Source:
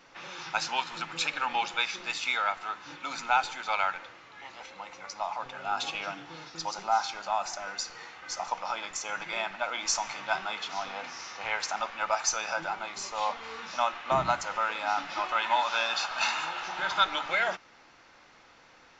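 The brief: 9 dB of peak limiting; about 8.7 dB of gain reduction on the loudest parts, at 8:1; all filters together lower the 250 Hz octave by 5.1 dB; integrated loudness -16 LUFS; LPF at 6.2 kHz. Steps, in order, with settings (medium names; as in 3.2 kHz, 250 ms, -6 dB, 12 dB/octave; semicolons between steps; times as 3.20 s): low-pass 6.2 kHz; peaking EQ 250 Hz -7.5 dB; compression 8:1, threshold -29 dBFS; trim +21 dB; peak limiter -4.5 dBFS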